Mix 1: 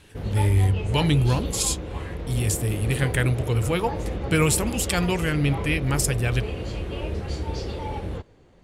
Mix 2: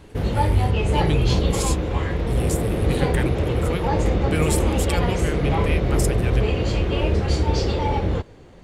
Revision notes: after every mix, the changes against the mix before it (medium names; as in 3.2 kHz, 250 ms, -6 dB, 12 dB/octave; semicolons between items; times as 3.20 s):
speech -4.5 dB; background +9.0 dB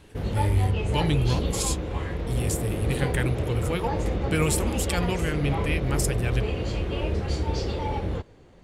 background -6.5 dB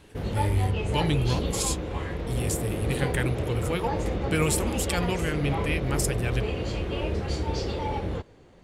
master: add bass shelf 110 Hz -4 dB